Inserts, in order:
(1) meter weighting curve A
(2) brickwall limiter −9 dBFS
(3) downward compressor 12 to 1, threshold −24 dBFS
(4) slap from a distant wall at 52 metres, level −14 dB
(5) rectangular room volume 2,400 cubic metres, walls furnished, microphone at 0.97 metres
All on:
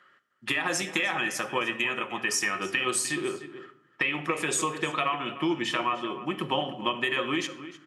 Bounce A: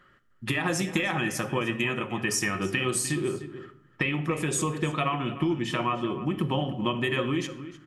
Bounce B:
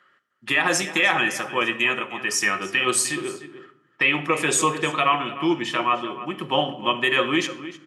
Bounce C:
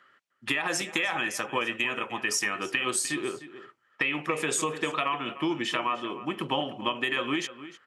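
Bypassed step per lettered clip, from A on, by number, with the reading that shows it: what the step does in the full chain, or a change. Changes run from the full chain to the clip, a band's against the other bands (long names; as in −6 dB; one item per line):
1, 125 Hz band +12.5 dB
3, average gain reduction 4.5 dB
5, echo-to-direct ratio −8.0 dB to −15.0 dB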